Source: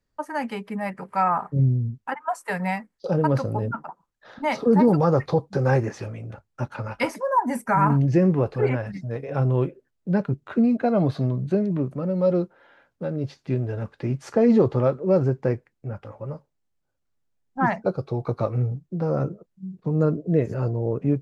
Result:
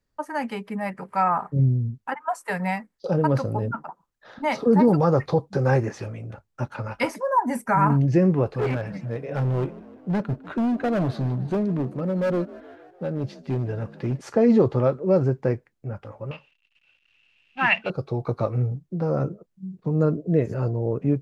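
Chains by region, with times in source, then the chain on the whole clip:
8.51–14.21 s: hard clipper -20 dBFS + frequency-shifting echo 152 ms, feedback 62%, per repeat +44 Hz, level -19 dB
16.31–17.90 s: companding laws mixed up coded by mu + resonant low-pass 2.7 kHz, resonance Q 16 + tilt shelf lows -9.5 dB, about 1.4 kHz
whole clip: none

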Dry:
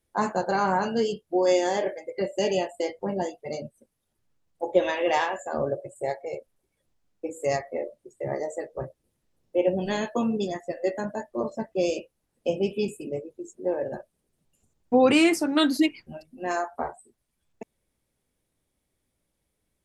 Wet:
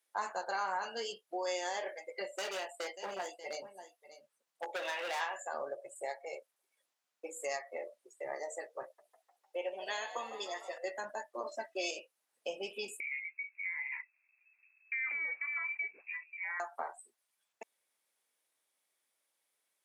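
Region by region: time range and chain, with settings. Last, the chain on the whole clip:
2.35–5.21 s: delay 588 ms -16 dB + hard clipper -24.5 dBFS
8.83–10.78 s: high-pass 370 Hz + frequency-shifting echo 151 ms, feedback 65%, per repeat +61 Hz, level -15.5 dB
11.46–11.91 s: band-stop 980 Hz, Q 6.2 + comb 3.1 ms, depth 88% + dynamic bell 3.3 kHz, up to +5 dB, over -46 dBFS, Q 0.73
13.00–16.60 s: compression 2.5:1, threshold -35 dBFS + frequency inversion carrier 2.6 kHz
whole clip: high-pass 860 Hz 12 dB/octave; compression 2:1, threshold -38 dBFS

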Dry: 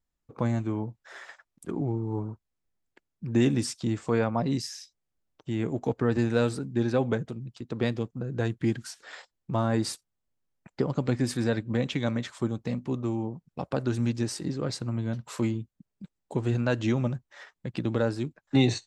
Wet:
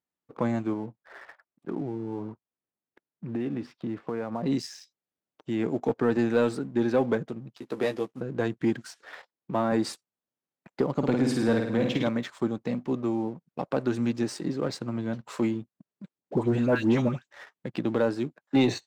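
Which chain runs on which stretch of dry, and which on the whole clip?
0.73–4.43 s: compression, threshold -28 dBFS + distance through air 360 m
7.57–8.21 s: CVSD coder 64 kbps + tone controls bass -8 dB, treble 0 dB + doubling 15 ms -6 dB
9.04–9.72 s: high-pass 130 Hz + distance through air 110 m
10.94–12.08 s: peaking EQ 1.9 kHz -4.5 dB 0.2 oct + flutter echo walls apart 9.1 m, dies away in 0.69 s
16.18–17.31 s: bass shelf 430 Hz +4 dB + phase dispersion highs, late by 104 ms, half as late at 1.4 kHz
whole clip: high-pass 200 Hz 12 dB/octave; treble shelf 4.1 kHz -10 dB; waveshaping leveller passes 1

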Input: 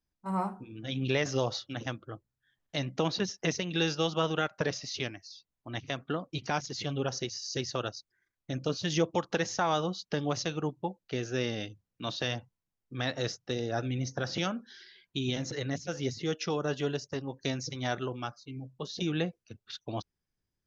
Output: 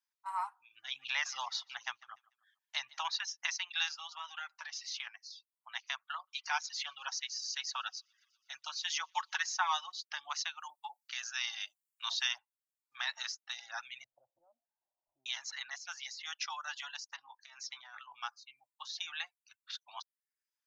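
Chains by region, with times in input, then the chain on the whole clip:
0.76–3.15 s: bass shelf 430 Hz +9 dB + feedback delay 147 ms, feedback 28%, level -16 dB
3.88–5.07 s: compression 4:1, threshold -32 dBFS + comb of notches 180 Hz
6.15–9.92 s: comb 5.4 ms, depth 48% + feedback echo behind a high-pass 122 ms, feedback 62%, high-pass 2.2 kHz, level -23 dB
10.60–12.38 s: high-pass 350 Hz + treble shelf 4 kHz +8.5 dB + bands offset in time highs, lows 50 ms, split 700 Hz
14.04–15.26 s: jump at every zero crossing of -41 dBFS + Chebyshev low-pass 590 Hz, order 5
17.16–18.21 s: treble shelf 2.9 kHz -8.5 dB + compressor with a negative ratio -37 dBFS, ratio -0.5 + doubling 19 ms -13 dB
whole clip: reverb removal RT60 0.5 s; elliptic high-pass 900 Hz, stop band 50 dB

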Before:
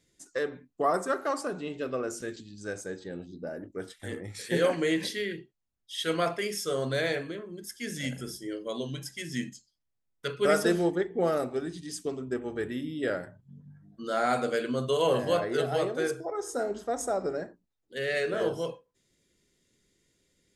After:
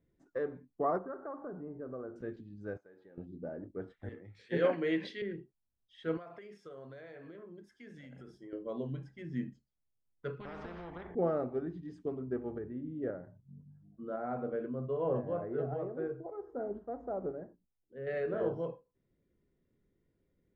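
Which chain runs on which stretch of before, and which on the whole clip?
0.98–2.16 s: steep low-pass 1.7 kHz + compression 2:1, threshold -39 dBFS
2.77–3.18 s: high-pass 990 Hz 6 dB/octave + compression, threshold -48 dBFS + distance through air 83 m
4.09–5.22 s: frequency weighting D + three bands expanded up and down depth 70%
6.17–8.53 s: compression 16:1, threshold -37 dBFS + tilt EQ +2.5 dB/octave
10.40–11.15 s: compression 10:1, threshold -28 dBFS + distance through air 230 m + spectrum-flattening compressor 4:1
12.58–18.07 s: tremolo saw up 1.9 Hz, depth 40% + tape spacing loss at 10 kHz 35 dB
whole clip: low-pass 1.2 kHz 12 dB/octave; bass shelf 200 Hz +5 dB; trim -5 dB

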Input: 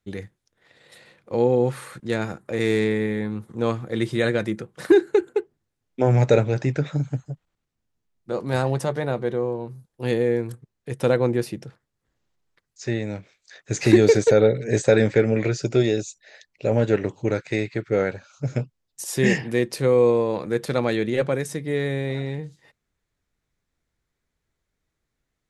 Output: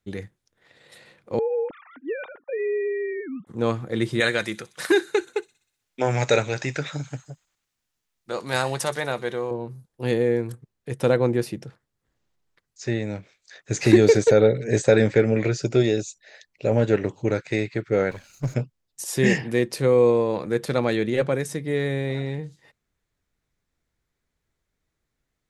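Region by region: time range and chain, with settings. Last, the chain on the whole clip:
1.39–3.47 s: formants replaced by sine waves + compression 2.5:1, threshold -25 dBFS
4.20–9.51 s: tilt shelf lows -8 dB, about 750 Hz + feedback echo behind a high-pass 62 ms, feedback 58%, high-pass 5.4 kHz, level -11 dB
18.11–18.54 s: comb filter that takes the minimum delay 0.45 ms + treble shelf 7.1 kHz +9 dB
whole clip: none

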